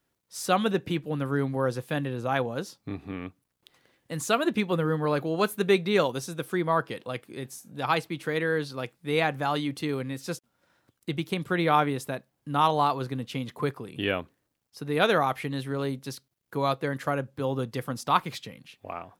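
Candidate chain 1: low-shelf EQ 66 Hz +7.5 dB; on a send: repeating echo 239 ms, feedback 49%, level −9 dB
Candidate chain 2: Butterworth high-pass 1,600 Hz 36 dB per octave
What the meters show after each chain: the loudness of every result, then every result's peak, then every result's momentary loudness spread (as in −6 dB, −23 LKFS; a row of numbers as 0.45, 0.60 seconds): −27.5, −37.0 LKFS; −8.0, −13.5 dBFS; 14, 15 LU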